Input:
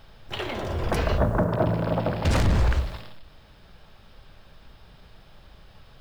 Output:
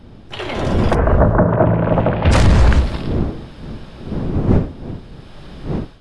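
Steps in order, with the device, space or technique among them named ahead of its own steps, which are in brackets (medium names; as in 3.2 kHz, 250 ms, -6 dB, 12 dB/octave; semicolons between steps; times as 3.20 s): 0.93–2.31 s: low-pass 1.5 kHz -> 3.3 kHz 24 dB/octave; smartphone video outdoors (wind noise 230 Hz; level rider gain up to 13.5 dB; AAC 64 kbps 24 kHz)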